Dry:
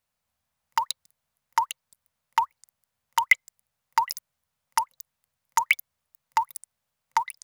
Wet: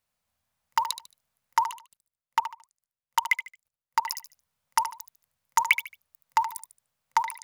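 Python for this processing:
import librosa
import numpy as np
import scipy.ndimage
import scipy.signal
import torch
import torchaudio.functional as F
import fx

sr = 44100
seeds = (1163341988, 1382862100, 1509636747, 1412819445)

y = fx.level_steps(x, sr, step_db=20, at=(1.69, 4.06))
y = fx.echo_feedback(y, sr, ms=74, feedback_pct=28, wet_db=-11)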